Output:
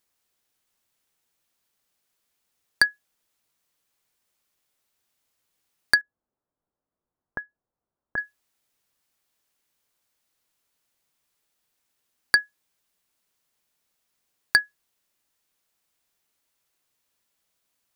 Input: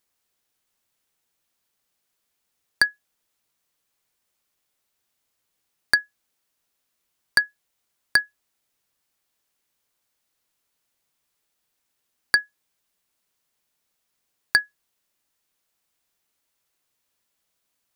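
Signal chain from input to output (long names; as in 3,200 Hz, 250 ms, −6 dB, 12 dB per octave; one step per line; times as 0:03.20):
0:06.01–0:08.18: Gaussian smoothing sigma 7.6 samples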